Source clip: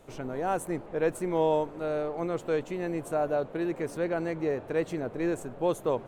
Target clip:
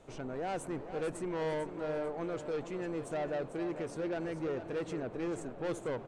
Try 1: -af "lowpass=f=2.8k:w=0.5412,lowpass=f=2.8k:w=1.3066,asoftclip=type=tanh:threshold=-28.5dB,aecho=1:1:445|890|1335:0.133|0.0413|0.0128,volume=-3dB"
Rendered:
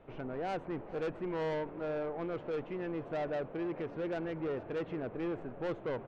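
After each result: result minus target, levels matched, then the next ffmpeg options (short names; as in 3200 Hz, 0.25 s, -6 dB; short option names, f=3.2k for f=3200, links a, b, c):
8000 Hz band -18.0 dB; echo-to-direct -7 dB
-af "lowpass=f=9k:w=0.5412,lowpass=f=9k:w=1.3066,asoftclip=type=tanh:threshold=-28.5dB,aecho=1:1:445|890|1335:0.133|0.0413|0.0128,volume=-3dB"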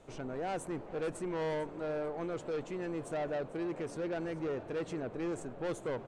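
echo-to-direct -7 dB
-af "lowpass=f=9k:w=0.5412,lowpass=f=9k:w=1.3066,asoftclip=type=tanh:threshold=-28.5dB,aecho=1:1:445|890|1335:0.299|0.0925|0.0287,volume=-3dB"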